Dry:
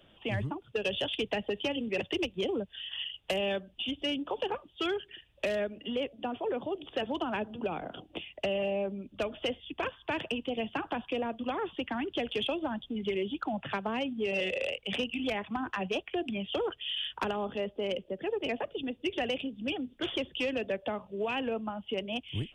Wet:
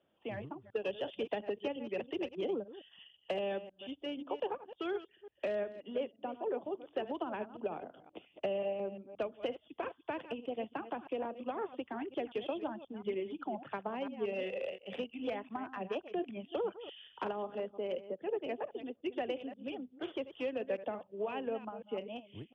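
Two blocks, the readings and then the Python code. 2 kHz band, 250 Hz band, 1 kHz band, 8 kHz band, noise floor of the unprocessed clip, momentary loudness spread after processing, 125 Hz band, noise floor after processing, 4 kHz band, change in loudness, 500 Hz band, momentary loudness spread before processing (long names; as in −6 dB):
−10.5 dB, −6.5 dB, −4.5 dB, can't be measured, −62 dBFS, 6 LU, −12.0 dB, −71 dBFS, −14.5 dB, −5.5 dB, −3.5 dB, 4 LU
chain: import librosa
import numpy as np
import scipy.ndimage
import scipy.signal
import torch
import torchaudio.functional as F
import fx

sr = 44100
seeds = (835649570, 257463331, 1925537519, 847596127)

y = fx.reverse_delay(x, sr, ms=176, wet_db=-9.0)
y = fx.bandpass_q(y, sr, hz=560.0, q=0.54)
y = fx.upward_expand(y, sr, threshold_db=-48.0, expansion=1.5)
y = y * 10.0 ** (-2.0 / 20.0)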